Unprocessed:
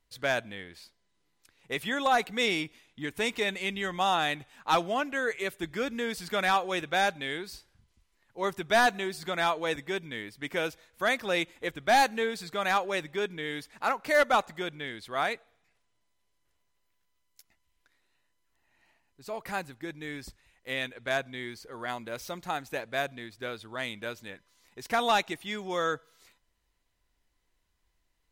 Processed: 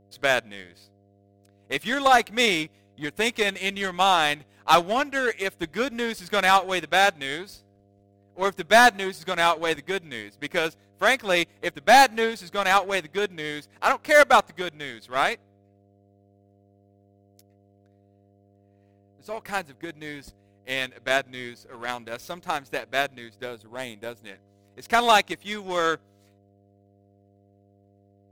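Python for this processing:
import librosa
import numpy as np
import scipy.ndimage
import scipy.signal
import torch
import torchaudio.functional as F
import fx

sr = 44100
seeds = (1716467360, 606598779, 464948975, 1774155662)

y = fx.power_curve(x, sr, exponent=1.4)
y = fx.spec_box(y, sr, start_s=23.45, length_s=0.8, low_hz=980.0, high_hz=6800.0, gain_db=-7)
y = fx.dmg_buzz(y, sr, base_hz=100.0, harmonics=7, level_db=-68.0, tilt_db=-3, odd_only=False)
y = F.gain(torch.from_numpy(y), 8.5).numpy()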